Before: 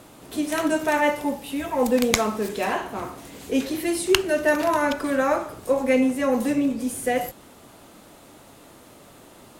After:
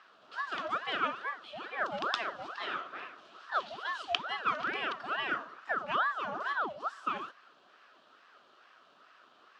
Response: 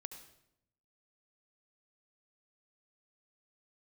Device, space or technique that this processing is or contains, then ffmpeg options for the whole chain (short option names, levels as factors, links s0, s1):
voice changer toy: -af "aeval=exprs='val(0)*sin(2*PI*870*n/s+870*0.65/2.3*sin(2*PI*2.3*n/s))':c=same,highpass=420,equalizer=f=490:t=q:w=4:g=-5,equalizer=f=870:t=q:w=4:g=-9,equalizer=f=1300:t=q:w=4:g=7,equalizer=f=2100:t=q:w=4:g=-9,equalizer=f=3000:t=q:w=4:g=4,lowpass=f=4500:w=0.5412,lowpass=f=4500:w=1.3066,volume=0.422"